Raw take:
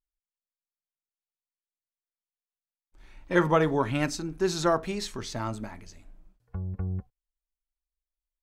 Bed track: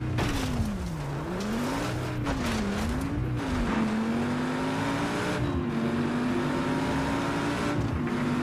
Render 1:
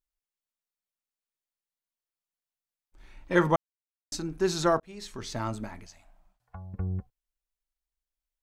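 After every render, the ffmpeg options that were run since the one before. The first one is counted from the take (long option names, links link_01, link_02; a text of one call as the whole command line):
ffmpeg -i in.wav -filter_complex "[0:a]asettb=1/sr,asplit=3[link_01][link_02][link_03];[link_01]atrim=end=5.864[link_04];[link_02]atrim=start=5.86:end=6.74,asetpts=PTS-STARTPTS,afade=type=in:duration=0.004:curve=qsin,afade=type=out:start_time=0.876:duration=0.004:curve=qsin,lowshelf=frequency=550:width_type=q:width=3:gain=-9[link_05];[link_03]atrim=start=6.736[link_06];[link_04][link_05]acrossfade=duration=0.004:curve1=hsin:curve2=qsin[link_07];[link_07][link_06]acrossfade=duration=0.004:curve1=qsin:curve2=hsin,asplit=4[link_08][link_09][link_10][link_11];[link_08]atrim=end=3.56,asetpts=PTS-STARTPTS,afade=type=out:start_time=3.556:duration=0.004:curve=hsin[link_12];[link_09]atrim=start=3.56:end=4.12,asetpts=PTS-STARTPTS,volume=0[link_13];[link_10]atrim=start=4.12:end=4.8,asetpts=PTS-STARTPTS,afade=type=in:duration=0.004:curve=hsin,afade=type=out:start_time=0.676:duration=0.004:curve=hsin[link_14];[link_11]atrim=start=4.8,asetpts=PTS-STARTPTS,afade=type=in:duration=0.55[link_15];[link_12][link_13][link_14][link_15]concat=n=4:v=0:a=1" out.wav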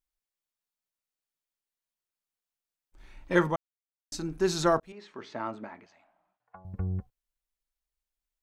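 ffmpeg -i in.wav -filter_complex "[0:a]asettb=1/sr,asplit=3[link_01][link_02][link_03];[link_01]atrim=end=4.924[link_04];[link_02]atrim=start=4.92:end=6.65,asetpts=PTS-STARTPTS,afade=type=in:duration=0.004:curve=qsin,afade=type=out:start_time=1.726:duration=0.004:curve=qsin,highpass=280,lowpass=2300[link_05];[link_03]atrim=start=6.646[link_06];[link_04][link_05]acrossfade=duration=0.004:curve1=hsin:curve2=qsin[link_07];[link_07][link_06]acrossfade=duration=0.004:curve1=qsin:curve2=hsin,asplit=3[link_08][link_09][link_10];[link_08]atrim=end=3.79,asetpts=PTS-STARTPTS,afade=type=out:start_time=3.36:duration=0.43:curve=qua:silence=0.223872[link_11];[link_09]atrim=start=3.79:end=3.8,asetpts=PTS-STARTPTS,volume=-13dB[link_12];[link_10]atrim=start=3.8,asetpts=PTS-STARTPTS,afade=type=in:duration=0.43:curve=qua:silence=0.223872[link_13];[link_11][link_12][link_13]concat=n=3:v=0:a=1" out.wav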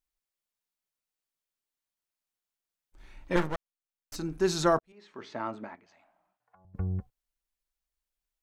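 ffmpeg -i in.wav -filter_complex "[0:a]asettb=1/sr,asplit=3[link_01][link_02][link_03];[link_01]atrim=end=3.364[link_04];[link_02]atrim=start=3.36:end=4.16,asetpts=PTS-STARTPTS,afade=type=in:duration=0.004:curve=qsin,afade=type=out:start_time=0.796:duration=0.004:curve=qsin,aeval=exprs='max(val(0),0)':channel_layout=same[link_05];[link_03]atrim=start=4.156[link_06];[link_04][link_05]acrossfade=duration=0.004:curve1=hsin:curve2=qsin[link_07];[link_07][link_06]acrossfade=duration=0.004:curve1=qsin:curve2=hsin,asettb=1/sr,asplit=3[link_08][link_09][link_10];[link_08]atrim=end=5.754[link_11];[link_09]atrim=start=5.75:end=6.75,asetpts=PTS-STARTPTS,afade=type=in:duration=0.004:curve=qsin,afade=type=out:start_time=0.996:duration=0.004:curve=qsin,acompressor=threshold=-58dB:ratio=5:attack=3.2:release=140:knee=1:detection=peak[link_12];[link_10]atrim=start=6.746[link_13];[link_11][link_12]acrossfade=duration=0.004:curve1=hsin:curve2=qsin[link_14];[link_14][link_13]acrossfade=duration=0.004:curve1=qsin:curve2=hsin,asplit=2[link_15][link_16];[link_15]atrim=end=4.79,asetpts=PTS-STARTPTS,afade=type=out:start_time=4.786:duration=0.004:curve=hsin[link_17];[link_16]atrim=start=4.79,asetpts=PTS-STARTPTS,afade=type=in:duration=0.46[link_18];[link_17][link_18]concat=n=2:v=0:a=1" out.wav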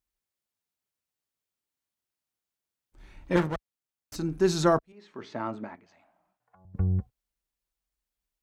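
ffmpeg -i in.wav -af "highpass=41,lowshelf=frequency=350:gain=6.5" out.wav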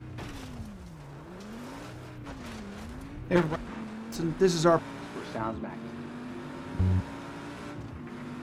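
ffmpeg -i in.wav -i bed.wav -filter_complex "[1:a]volume=-12.5dB[link_01];[0:a][link_01]amix=inputs=2:normalize=0" out.wav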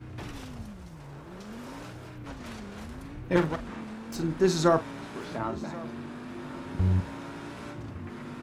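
ffmpeg -i in.wav -filter_complex "[0:a]asplit=2[link_01][link_02];[link_02]adelay=43,volume=-13.5dB[link_03];[link_01][link_03]amix=inputs=2:normalize=0,aecho=1:1:1082:0.106" out.wav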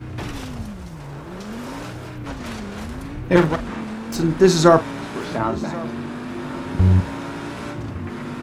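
ffmpeg -i in.wav -af "volume=10dB,alimiter=limit=-1dB:level=0:latency=1" out.wav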